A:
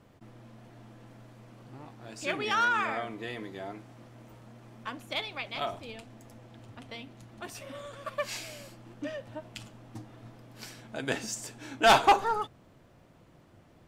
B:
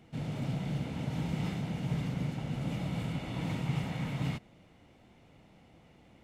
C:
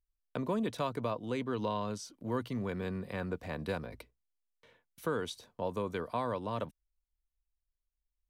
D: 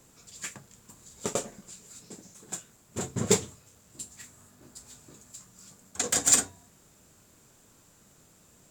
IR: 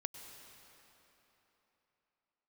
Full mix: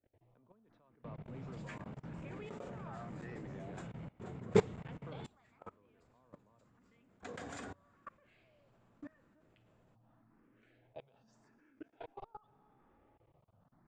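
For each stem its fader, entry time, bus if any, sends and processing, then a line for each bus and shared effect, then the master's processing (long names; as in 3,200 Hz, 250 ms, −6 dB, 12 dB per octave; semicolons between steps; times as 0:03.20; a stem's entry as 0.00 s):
−13.5 dB, 0.00 s, send −6 dB, compressor whose output falls as the input rises −33 dBFS, ratio −0.5; frequency shifter mixed with the dry sound +0.84 Hz
−6.5 dB, 0.90 s, no send, soft clipping −35.5 dBFS, distortion −10 dB
−16.0 dB, 0.00 s, no send, no processing
+1.5 dB, 1.25 s, send −23.5 dB, no processing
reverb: on, RT60 3.7 s, pre-delay 92 ms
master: low-pass filter 1,900 Hz 12 dB per octave; output level in coarse steps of 23 dB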